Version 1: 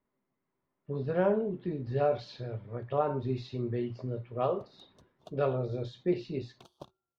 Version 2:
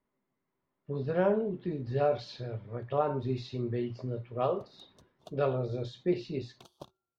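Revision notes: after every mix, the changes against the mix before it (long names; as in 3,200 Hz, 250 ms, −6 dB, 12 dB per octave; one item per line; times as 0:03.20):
master: add high-shelf EQ 4,700 Hz +6 dB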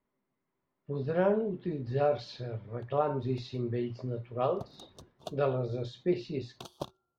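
background +9.5 dB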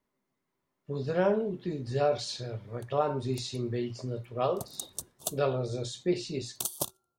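master: remove high-frequency loss of the air 270 metres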